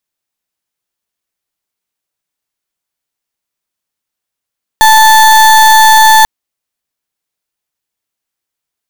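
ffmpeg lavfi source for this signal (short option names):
-f lavfi -i "aevalsrc='0.631*(2*lt(mod(877*t,1),0.34)-1)':d=1.44:s=44100"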